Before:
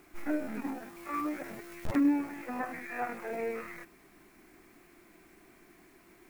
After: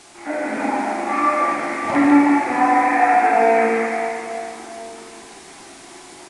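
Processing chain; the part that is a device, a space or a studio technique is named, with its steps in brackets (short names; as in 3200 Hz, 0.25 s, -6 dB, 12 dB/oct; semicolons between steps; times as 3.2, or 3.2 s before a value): bell 640 Hz +3 dB 0.77 oct; reverse bouncing-ball echo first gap 0.15 s, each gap 1.3×, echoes 5; spring tank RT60 1.7 s, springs 38/44 ms, chirp 70 ms, DRR 0.5 dB; dynamic EQ 2100 Hz, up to +7 dB, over -53 dBFS, Q 2.4; filmed off a television (BPF 190–6600 Hz; bell 830 Hz +11.5 dB 0.42 oct; reverb RT60 0.45 s, pre-delay 26 ms, DRR 0.5 dB; white noise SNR 21 dB; AGC gain up to 4 dB; gain +3.5 dB; AAC 48 kbps 22050 Hz)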